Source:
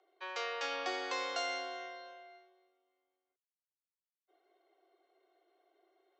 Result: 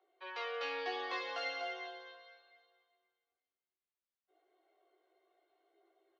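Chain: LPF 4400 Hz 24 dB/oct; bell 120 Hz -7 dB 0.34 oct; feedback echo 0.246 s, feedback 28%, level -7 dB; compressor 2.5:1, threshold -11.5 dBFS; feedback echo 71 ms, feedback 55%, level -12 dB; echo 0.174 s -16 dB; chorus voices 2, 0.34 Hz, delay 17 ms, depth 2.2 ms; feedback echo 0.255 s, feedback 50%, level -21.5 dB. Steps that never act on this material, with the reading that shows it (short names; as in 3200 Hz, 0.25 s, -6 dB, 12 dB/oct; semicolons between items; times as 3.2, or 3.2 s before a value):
bell 120 Hz: input band starts at 270 Hz; compressor, threshold -11.5 dBFS: input peak -23.5 dBFS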